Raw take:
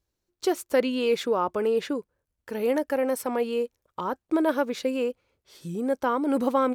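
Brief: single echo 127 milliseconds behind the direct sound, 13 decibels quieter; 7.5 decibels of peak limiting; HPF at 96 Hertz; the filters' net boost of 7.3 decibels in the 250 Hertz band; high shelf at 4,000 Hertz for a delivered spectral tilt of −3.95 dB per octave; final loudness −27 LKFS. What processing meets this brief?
high-pass filter 96 Hz
parametric band 250 Hz +8.5 dB
high-shelf EQ 4,000 Hz −4.5 dB
brickwall limiter −15.5 dBFS
single-tap delay 127 ms −13 dB
level −2 dB

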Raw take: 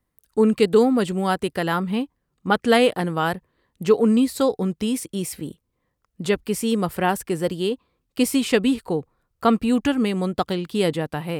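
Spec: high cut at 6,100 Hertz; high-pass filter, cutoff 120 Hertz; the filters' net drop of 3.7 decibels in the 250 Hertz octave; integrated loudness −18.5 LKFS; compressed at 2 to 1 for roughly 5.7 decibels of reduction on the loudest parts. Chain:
high-pass filter 120 Hz
low-pass filter 6,100 Hz
parametric band 250 Hz −4 dB
downward compressor 2 to 1, threshold −23 dBFS
level +8.5 dB

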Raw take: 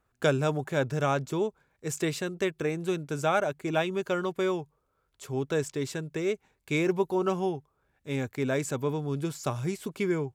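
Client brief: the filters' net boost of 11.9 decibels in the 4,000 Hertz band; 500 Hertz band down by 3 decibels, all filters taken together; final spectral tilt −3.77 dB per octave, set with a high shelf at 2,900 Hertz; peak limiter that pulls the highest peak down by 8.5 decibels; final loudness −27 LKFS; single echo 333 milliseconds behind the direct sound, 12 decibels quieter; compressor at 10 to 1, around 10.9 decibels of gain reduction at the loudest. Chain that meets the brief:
parametric band 500 Hz −4.5 dB
high-shelf EQ 2,900 Hz +8.5 dB
parametric band 4,000 Hz +8 dB
downward compressor 10 to 1, threshold −29 dBFS
brickwall limiter −24 dBFS
single-tap delay 333 ms −12 dB
level +8 dB

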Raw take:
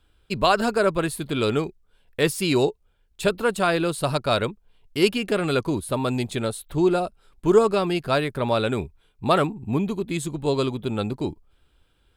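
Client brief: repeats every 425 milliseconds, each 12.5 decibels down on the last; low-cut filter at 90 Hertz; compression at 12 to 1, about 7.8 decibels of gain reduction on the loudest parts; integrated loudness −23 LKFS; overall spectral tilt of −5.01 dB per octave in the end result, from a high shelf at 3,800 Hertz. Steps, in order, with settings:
high-pass filter 90 Hz
high-shelf EQ 3,800 Hz −4 dB
downward compressor 12 to 1, threshold −20 dBFS
repeating echo 425 ms, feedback 24%, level −12.5 dB
level +4 dB

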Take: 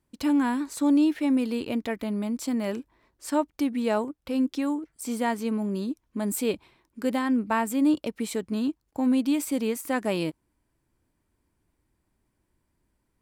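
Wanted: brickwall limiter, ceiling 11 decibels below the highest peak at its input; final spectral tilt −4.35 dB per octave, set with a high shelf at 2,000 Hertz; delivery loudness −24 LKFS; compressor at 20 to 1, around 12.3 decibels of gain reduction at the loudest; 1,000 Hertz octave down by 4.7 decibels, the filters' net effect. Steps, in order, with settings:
parametric band 1,000 Hz −6.5 dB
high-shelf EQ 2,000 Hz +3.5 dB
downward compressor 20 to 1, threshold −31 dBFS
level +15 dB
brickwall limiter −16 dBFS

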